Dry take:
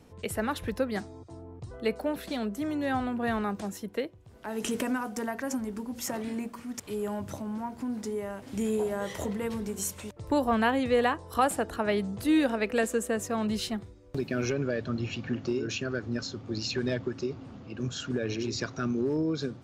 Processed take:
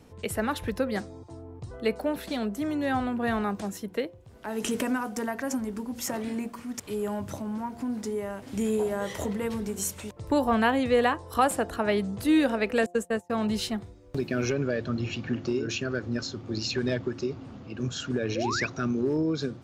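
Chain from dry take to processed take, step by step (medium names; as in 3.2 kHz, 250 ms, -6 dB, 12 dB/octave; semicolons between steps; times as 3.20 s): 12.86–13.30 s: gate -28 dBFS, range -34 dB; de-hum 175.4 Hz, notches 6; 18.35–18.67 s: painted sound rise 450–2700 Hz -33 dBFS; trim +2 dB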